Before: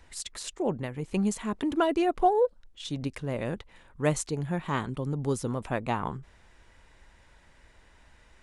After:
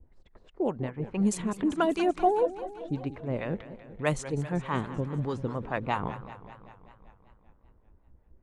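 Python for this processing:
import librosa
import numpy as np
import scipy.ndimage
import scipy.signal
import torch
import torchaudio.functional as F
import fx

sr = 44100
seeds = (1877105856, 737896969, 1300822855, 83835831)

y = fx.harmonic_tremolo(x, sr, hz=4.8, depth_pct=70, crossover_hz=640.0)
y = fx.env_lowpass(y, sr, base_hz=330.0, full_db=-26.0)
y = fx.echo_warbled(y, sr, ms=194, feedback_pct=65, rate_hz=2.8, cents=189, wet_db=-14)
y = F.gain(torch.from_numpy(y), 3.0).numpy()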